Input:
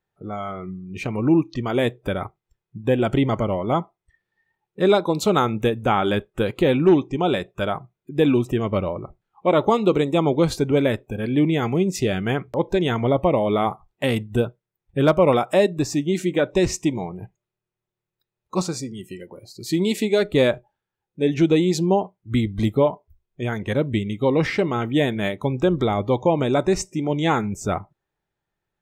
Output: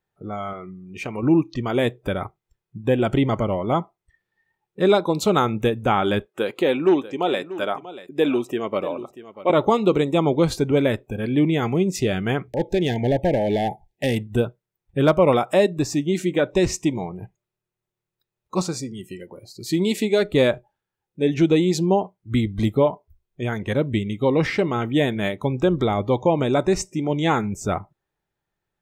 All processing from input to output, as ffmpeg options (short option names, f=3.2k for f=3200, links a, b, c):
-filter_complex "[0:a]asettb=1/sr,asplit=3[a][b][c];[a]atrim=end=0.534[d];[b]atrim=start=0.53:end=1.23,asetpts=PTS-STARTPTS,afade=t=in:d=0.004:c=qsin,afade=t=out:st=0.696:d=0.004:c=qsin,lowshelf=f=230:g=-9.5,bandreject=f=4k:w=9.7,acompressor=mode=upward:threshold=-36dB:ratio=2.5:attack=3.2:release=140:knee=2.83:detection=peak[e];[c]atrim=start=1.226[f];[d][e]acrossfade=d=0.004:c1=hsin:c2=qsin[g];[g][f]acrossfade=d=0.004:c1=qsin:c2=hsin,asettb=1/sr,asplit=3[h][i][j];[h]atrim=end=6.264[k];[i]atrim=start=6.26:end=9.5,asetpts=PTS-STARTPTS,afade=t=in:d=0.004:c=qsin,afade=t=out:st=3.236:d=0.004:c=qsin,highpass=300,aecho=1:1:638:0.168,atrim=end_sample=142884[l];[j]atrim=start=9.496[m];[k][l]acrossfade=d=0.004:c1=hsin:c2=qsin[n];[n][m]acrossfade=d=0.004:c1=qsin:c2=hsin,asettb=1/sr,asplit=3[o][p][q];[o]atrim=end=12.484[r];[p]atrim=start=12.48:end=14.27,asetpts=PTS-STARTPTS,afade=t=in:d=0.004:c=qsin,afade=t=out:st=1.786:d=0.004:c=qsin,aeval=exprs='clip(val(0),-1,0.141)':c=same,asuperstop=centerf=1200:order=20:qfactor=1.7[s];[q]atrim=start=14.266[t];[r][s]acrossfade=d=0.004:c1=hsin:c2=qsin[u];[u][t]acrossfade=d=0.004:c1=qsin:c2=hsin"